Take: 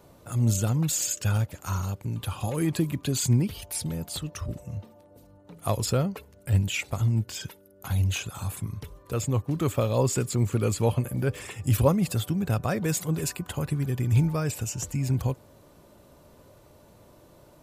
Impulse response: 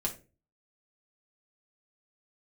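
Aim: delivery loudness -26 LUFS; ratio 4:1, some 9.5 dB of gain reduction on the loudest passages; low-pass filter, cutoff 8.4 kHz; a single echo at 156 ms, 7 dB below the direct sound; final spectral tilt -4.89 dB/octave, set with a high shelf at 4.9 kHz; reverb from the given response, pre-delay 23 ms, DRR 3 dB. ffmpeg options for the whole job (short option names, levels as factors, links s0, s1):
-filter_complex "[0:a]lowpass=8400,highshelf=f=4900:g=5.5,acompressor=threshold=0.0398:ratio=4,aecho=1:1:156:0.447,asplit=2[s0][s1];[1:a]atrim=start_sample=2205,adelay=23[s2];[s1][s2]afir=irnorm=-1:irlink=0,volume=0.473[s3];[s0][s3]amix=inputs=2:normalize=0,volume=1.58"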